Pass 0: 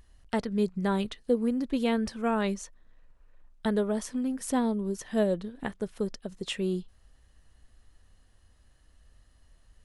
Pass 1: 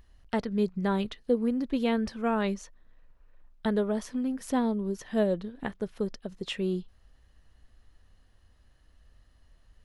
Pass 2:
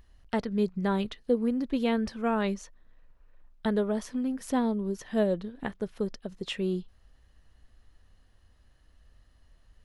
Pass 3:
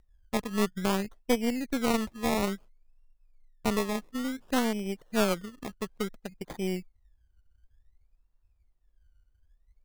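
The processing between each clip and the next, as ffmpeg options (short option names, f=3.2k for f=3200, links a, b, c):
-af "equalizer=f=8.7k:t=o:w=0.85:g=-9"
-af anull
-af "afwtdn=0.0112,acrusher=samples=23:mix=1:aa=0.000001:lfo=1:lforange=13.8:lforate=0.57,aeval=exprs='0.2*(cos(1*acos(clip(val(0)/0.2,-1,1)))-cos(1*PI/2))+0.0631*(cos(4*acos(clip(val(0)/0.2,-1,1)))-cos(4*PI/2))+0.0316*(cos(6*acos(clip(val(0)/0.2,-1,1)))-cos(6*PI/2))+0.00562*(cos(7*acos(clip(val(0)/0.2,-1,1)))-cos(7*PI/2))+0.00708*(cos(8*acos(clip(val(0)/0.2,-1,1)))-cos(8*PI/2))':c=same,volume=-2dB"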